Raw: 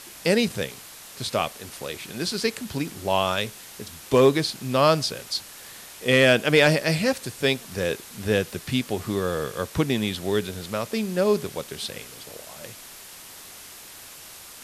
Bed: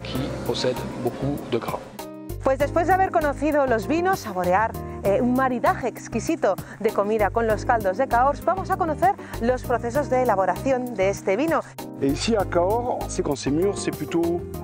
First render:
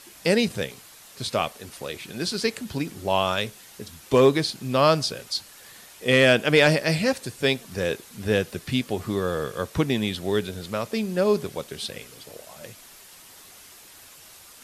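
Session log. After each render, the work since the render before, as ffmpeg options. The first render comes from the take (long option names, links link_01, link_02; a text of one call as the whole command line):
ffmpeg -i in.wav -af "afftdn=noise_reduction=6:noise_floor=-44" out.wav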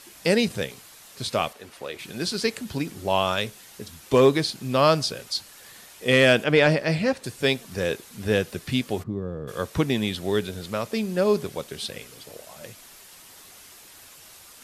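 ffmpeg -i in.wav -filter_complex "[0:a]asettb=1/sr,asplit=3[link_01][link_02][link_03];[link_01]atrim=end=1.534[link_04];[link_02]atrim=start=1.53:end=1.99,asetpts=PTS-STARTPTS,afade=type=in:duration=0.004:curve=qsin,afade=type=out:start_time=0.456:duration=0.004:curve=qsin,bass=frequency=250:gain=-8,treble=frequency=4000:gain=-8[link_05];[link_03]atrim=start=1.986[link_06];[link_04][link_05]acrossfade=duration=0.004:curve1=hsin:curve2=qsin[link_07];[link_07][link_06]acrossfade=duration=0.004:curve1=qsin:curve2=hsin,asettb=1/sr,asplit=3[link_08][link_09][link_10];[link_08]atrim=end=6.444[link_11];[link_09]atrim=start=6.44:end=7.24,asetpts=PTS-STARTPTS,afade=type=in:duration=0.004:curve=qsin,afade=type=out:start_time=0.796:duration=0.004:curve=qsin,lowpass=frequency=2700:poles=1[link_12];[link_10]atrim=start=7.236[link_13];[link_11][link_12]acrossfade=duration=0.004:curve1=hsin:curve2=qsin[link_14];[link_14][link_13]acrossfade=duration=0.004:curve1=qsin:curve2=hsin,asplit=3[link_15][link_16][link_17];[link_15]afade=type=out:start_time=9.02:duration=0.02[link_18];[link_16]bandpass=frequency=120:width_type=q:width=0.63,afade=type=in:start_time=9.02:duration=0.02,afade=type=out:start_time=9.47:duration=0.02[link_19];[link_17]afade=type=in:start_time=9.47:duration=0.02[link_20];[link_18][link_19][link_20]amix=inputs=3:normalize=0" out.wav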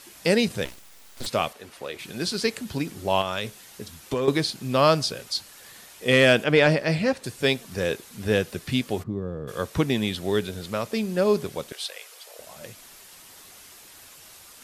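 ffmpeg -i in.wav -filter_complex "[0:a]asplit=3[link_01][link_02][link_03];[link_01]afade=type=out:start_time=0.64:duration=0.02[link_04];[link_02]aeval=exprs='abs(val(0))':channel_layout=same,afade=type=in:start_time=0.64:duration=0.02,afade=type=out:start_time=1.25:duration=0.02[link_05];[link_03]afade=type=in:start_time=1.25:duration=0.02[link_06];[link_04][link_05][link_06]amix=inputs=3:normalize=0,asettb=1/sr,asplit=3[link_07][link_08][link_09];[link_07]atrim=end=3.214[link_10];[link_08]atrim=start=3.21:end=4.28,asetpts=PTS-STARTPTS,afade=type=in:duration=0.004:curve=qsin,afade=type=out:start_time=1.066:duration=0.004:curve=qsin,acompressor=threshold=-22dB:ratio=6:attack=3.2:release=140:knee=1:detection=peak[link_11];[link_09]atrim=start=4.276[link_12];[link_10][link_11]acrossfade=duration=0.004:curve1=hsin:curve2=qsin[link_13];[link_13][link_12]acrossfade=duration=0.004:curve1=qsin:curve2=hsin,asettb=1/sr,asplit=3[link_14][link_15][link_16];[link_14]atrim=end=11.724[link_17];[link_15]atrim=start=11.72:end=12.39,asetpts=PTS-STARTPTS,afade=type=in:duration=0.004:curve=qsin,afade=type=out:start_time=0.666:duration=0.004:curve=qsin,highpass=frequency=570:width=0.5412,highpass=frequency=570:width=1.3066[link_18];[link_16]atrim=start=12.386[link_19];[link_17][link_18]acrossfade=duration=0.004:curve1=hsin:curve2=qsin[link_20];[link_20][link_19]acrossfade=duration=0.004:curve1=qsin:curve2=hsin" out.wav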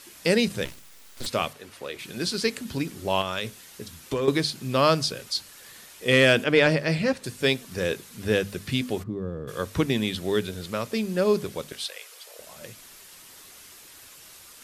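ffmpeg -i in.wav -af "equalizer=frequency=750:width=2.1:gain=-4,bandreject=frequency=50:width_type=h:width=6,bandreject=frequency=100:width_type=h:width=6,bandreject=frequency=150:width_type=h:width=6,bandreject=frequency=200:width_type=h:width=6,bandreject=frequency=250:width_type=h:width=6" out.wav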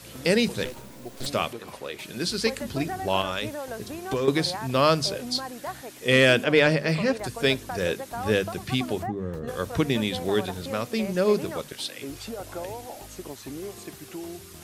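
ffmpeg -i in.wav -i bed.wav -filter_complex "[1:a]volume=-15dB[link_01];[0:a][link_01]amix=inputs=2:normalize=0" out.wav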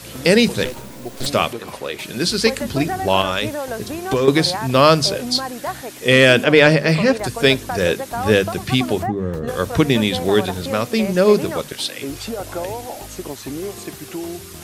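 ffmpeg -i in.wav -af "volume=8.5dB,alimiter=limit=-1dB:level=0:latency=1" out.wav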